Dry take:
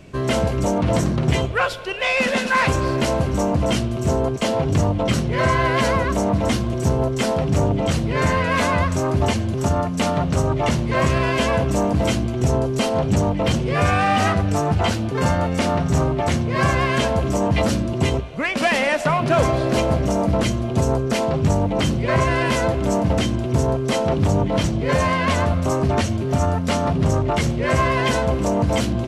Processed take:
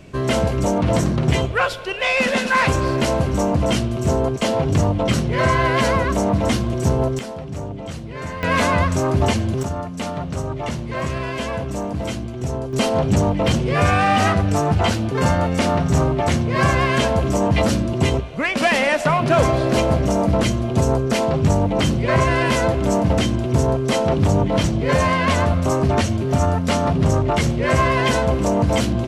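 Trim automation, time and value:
+1 dB
from 7.19 s -10.5 dB
from 8.43 s +1.5 dB
from 9.63 s -6 dB
from 12.73 s +1.5 dB

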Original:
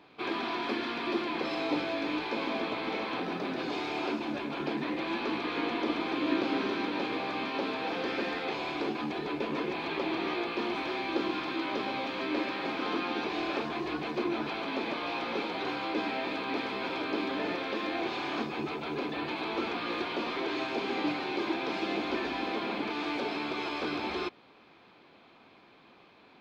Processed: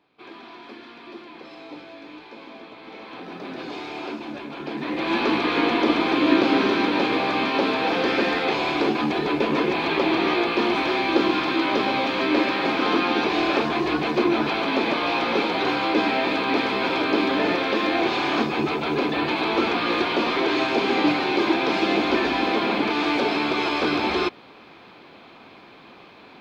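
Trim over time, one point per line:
2.76 s -9 dB
3.55 s +0.5 dB
4.64 s +0.5 dB
5.17 s +11 dB

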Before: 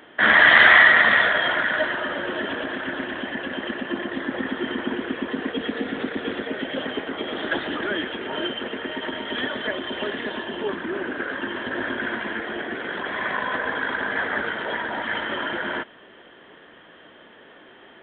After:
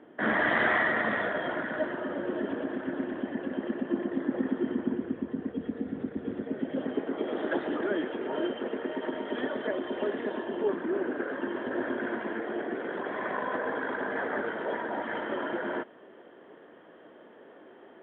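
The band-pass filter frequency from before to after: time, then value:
band-pass filter, Q 0.81
4.50 s 270 Hz
5.28 s 120 Hz
6.16 s 120 Hz
7.30 s 420 Hz

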